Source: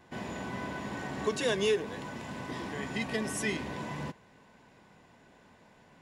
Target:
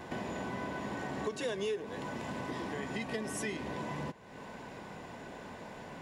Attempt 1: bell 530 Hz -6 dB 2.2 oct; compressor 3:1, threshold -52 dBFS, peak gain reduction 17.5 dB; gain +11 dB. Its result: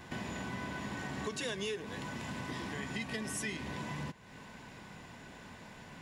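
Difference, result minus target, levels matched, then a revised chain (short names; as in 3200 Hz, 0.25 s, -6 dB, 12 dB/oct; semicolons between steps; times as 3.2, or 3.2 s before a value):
500 Hz band -5.0 dB
bell 530 Hz +4 dB 2.2 oct; compressor 3:1, threshold -52 dBFS, peak gain reduction 22.5 dB; gain +11 dB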